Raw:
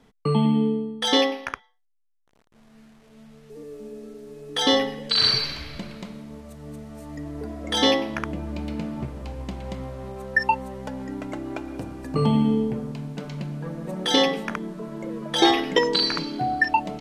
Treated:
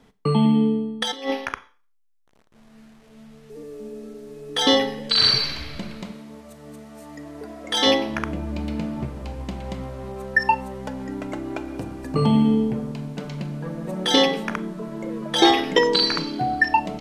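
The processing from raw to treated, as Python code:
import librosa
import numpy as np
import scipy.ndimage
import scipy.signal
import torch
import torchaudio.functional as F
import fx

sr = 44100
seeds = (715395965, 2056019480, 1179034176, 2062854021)

y = fx.over_compress(x, sr, threshold_db=-26.0, ratio=-0.5, at=(1.0, 1.45), fade=0.02)
y = fx.highpass(y, sr, hz=fx.line((6.11, 240.0), (7.85, 560.0)), slope=6, at=(6.11, 7.85), fade=0.02)
y = fx.rev_schroeder(y, sr, rt60_s=0.39, comb_ms=29, drr_db=15.5)
y = y * librosa.db_to_amplitude(2.0)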